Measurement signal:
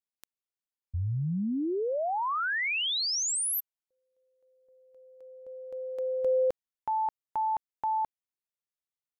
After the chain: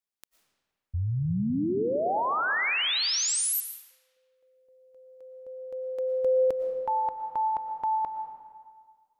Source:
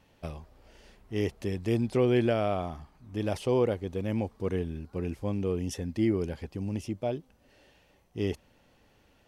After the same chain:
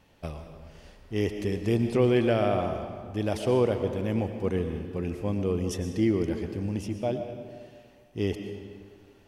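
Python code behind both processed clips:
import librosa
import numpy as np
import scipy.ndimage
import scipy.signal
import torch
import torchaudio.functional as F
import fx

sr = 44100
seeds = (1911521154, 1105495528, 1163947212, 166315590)

y = fx.rev_freeverb(x, sr, rt60_s=1.8, hf_ratio=0.75, predelay_ms=75, drr_db=6.5)
y = y * 10.0 ** (2.0 / 20.0)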